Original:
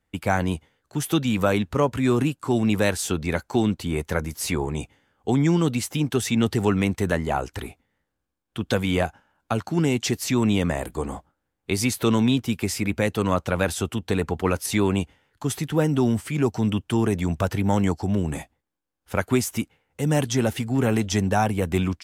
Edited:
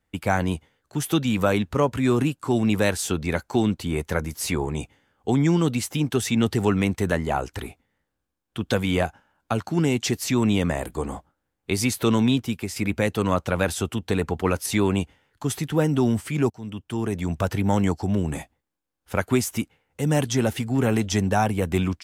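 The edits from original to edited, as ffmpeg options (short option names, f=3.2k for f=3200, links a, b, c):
-filter_complex "[0:a]asplit=3[a][b][c];[a]atrim=end=12.76,asetpts=PTS-STARTPTS,afade=t=out:st=12.35:d=0.41:silence=0.446684[d];[b]atrim=start=12.76:end=16.5,asetpts=PTS-STARTPTS,afade=t=in:d=0.004:c=hsin:silence=0.446684,afade=t=out:st=3.736:d=0.004:c=hsin:silence=0.105925[e];[c]atrim=start=16.5,asetpts=PTS-STARTPTS,afade=t=in:d=1.01:silence=0.105925[f];[d][e][f]concat=n=3:v=0:a=1"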